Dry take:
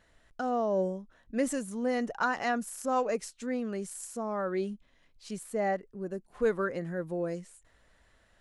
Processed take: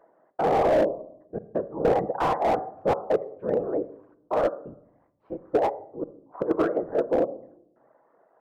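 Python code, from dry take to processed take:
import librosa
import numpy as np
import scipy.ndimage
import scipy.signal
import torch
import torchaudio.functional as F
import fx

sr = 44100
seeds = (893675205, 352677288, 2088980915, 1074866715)

y = scipy.signal.sosfilt(scipy.signal.butter(4, 310.0, 'highpass', fs=sr, output='sos'), x)
y = fx.dereverb_blind(y, sr, rt60_s=0.58)
y = scipy.signal.sosfilt(scipy.signal.butter(4, 1100.0, 'lowpass', fs=sr, output='sos'), y)
y = fx.peak_eq(y, sr, hz=670.0, db=6.0, octaves=1.8)
y = fx.over_compress(y, sr, threshold_db=-26.0, ratio=-0.5, at=(5.53, 6.54), fade=0.02)
y = fx.step_gate(y, sr, bpm=87, pattern='xxxxxx.x.', floor_db=-60.0, edge_ms=4.5)
y = fx.whisperise(y, sr, seeds[0])
y = fx.room_shoebox(y, sr, seeds[1], volume_m3=1900.0, walls='furnished', distance_m=0.68)
y = fx.slew_limit(y, sr, full_power_hz=32.0)
y = y * 10.0 ** (7.5 / 20.0)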